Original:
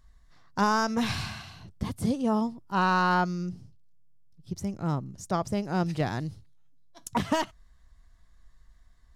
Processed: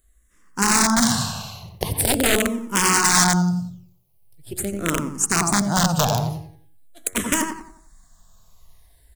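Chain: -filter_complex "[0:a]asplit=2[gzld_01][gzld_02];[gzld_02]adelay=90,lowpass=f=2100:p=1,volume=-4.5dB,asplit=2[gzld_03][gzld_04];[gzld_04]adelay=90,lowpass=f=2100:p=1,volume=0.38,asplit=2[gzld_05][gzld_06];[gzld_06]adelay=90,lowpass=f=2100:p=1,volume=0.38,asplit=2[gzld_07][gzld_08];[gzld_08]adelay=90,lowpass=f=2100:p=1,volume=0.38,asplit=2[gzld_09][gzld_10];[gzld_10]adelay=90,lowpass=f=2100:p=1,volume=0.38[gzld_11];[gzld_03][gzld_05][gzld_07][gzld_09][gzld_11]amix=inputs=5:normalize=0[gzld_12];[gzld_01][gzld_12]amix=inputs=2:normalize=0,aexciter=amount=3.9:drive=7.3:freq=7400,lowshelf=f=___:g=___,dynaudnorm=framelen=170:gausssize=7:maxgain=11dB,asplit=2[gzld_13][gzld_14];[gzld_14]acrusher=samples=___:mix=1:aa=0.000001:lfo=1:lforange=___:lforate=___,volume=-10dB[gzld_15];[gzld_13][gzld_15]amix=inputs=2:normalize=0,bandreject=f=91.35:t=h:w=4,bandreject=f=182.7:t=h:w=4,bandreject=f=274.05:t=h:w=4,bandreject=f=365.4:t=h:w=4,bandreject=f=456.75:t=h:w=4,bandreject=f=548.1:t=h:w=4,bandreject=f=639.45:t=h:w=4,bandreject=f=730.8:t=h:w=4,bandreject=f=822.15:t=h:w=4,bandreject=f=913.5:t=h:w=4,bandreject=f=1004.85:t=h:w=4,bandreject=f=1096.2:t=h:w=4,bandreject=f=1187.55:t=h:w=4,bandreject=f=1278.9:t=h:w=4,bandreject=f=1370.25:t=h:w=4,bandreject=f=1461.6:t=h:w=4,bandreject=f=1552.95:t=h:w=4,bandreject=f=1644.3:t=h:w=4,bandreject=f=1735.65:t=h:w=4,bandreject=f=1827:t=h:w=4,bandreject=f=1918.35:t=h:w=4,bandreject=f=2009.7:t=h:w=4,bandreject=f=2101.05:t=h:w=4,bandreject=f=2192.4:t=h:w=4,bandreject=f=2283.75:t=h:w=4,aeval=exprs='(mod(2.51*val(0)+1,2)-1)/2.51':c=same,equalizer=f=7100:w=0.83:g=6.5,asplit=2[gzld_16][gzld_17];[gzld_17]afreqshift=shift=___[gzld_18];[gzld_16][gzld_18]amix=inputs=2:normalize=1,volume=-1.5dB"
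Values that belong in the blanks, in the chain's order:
160, -4, 17, 17, 0.78, -0.43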